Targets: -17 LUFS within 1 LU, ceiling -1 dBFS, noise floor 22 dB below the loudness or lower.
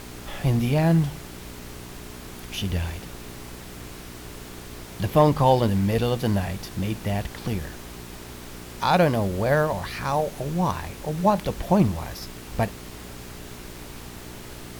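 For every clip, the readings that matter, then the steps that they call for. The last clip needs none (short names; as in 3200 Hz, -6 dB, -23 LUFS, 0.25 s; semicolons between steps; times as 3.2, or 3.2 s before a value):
hum 60 Hz; harmonics up to 420 Hz; hum level -42 dBFS; noise floor -40 dBFS; noise floor target -46 dBFS; loudness -24.0 LUFS; peak -4.5 dBFS; loudness target -17.0 LUFS
-> de-hum 60 Hz, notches 7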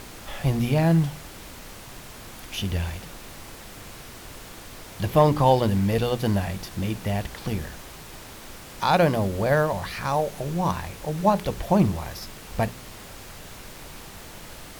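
hum none; noise floor -43 dBFS; noise floor target -47 dBFS
-> noise print and reduce 6 dB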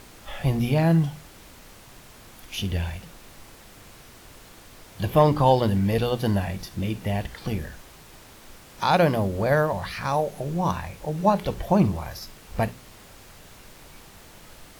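noise floor -49 dBFS; loudness -24.5 LUFS; peak -5.5 dBFS; loudness target -17.0 LUFS
-> gain +7.5 dB; limiter -1 dBFS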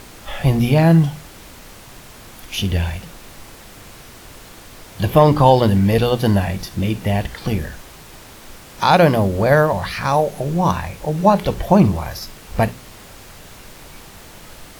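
loudness -17.0 LUFS; peak -1.0 dBFS; noise floor -41 dBFS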